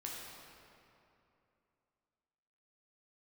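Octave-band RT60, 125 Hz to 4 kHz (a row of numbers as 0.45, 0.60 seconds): 3.0, 3.0, 2.9, 2.7, 2.3, 1.8 seconds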